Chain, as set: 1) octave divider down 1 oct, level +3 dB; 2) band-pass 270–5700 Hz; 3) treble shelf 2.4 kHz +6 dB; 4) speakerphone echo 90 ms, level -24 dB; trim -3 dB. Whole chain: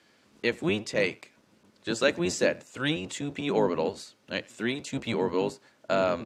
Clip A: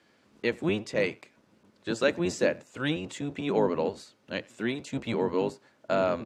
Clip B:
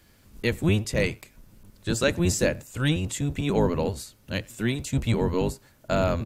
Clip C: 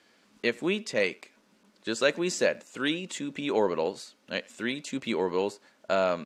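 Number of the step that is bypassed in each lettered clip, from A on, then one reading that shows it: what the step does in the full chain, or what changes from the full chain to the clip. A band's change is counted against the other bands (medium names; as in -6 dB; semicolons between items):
3, 8 kHz band -5.0 dB; 2, 125 Hz band +11.5 dB; 1, 125 Hz band -5.5 dB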